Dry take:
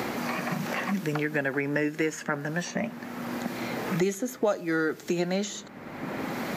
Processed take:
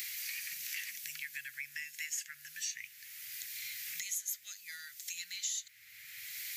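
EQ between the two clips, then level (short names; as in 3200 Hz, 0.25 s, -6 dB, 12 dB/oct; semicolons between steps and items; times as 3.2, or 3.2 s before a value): elliptic band-stop 110–2000 Hz, stop band 40 dB; pre-emphasis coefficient 0.97; +4.0 dB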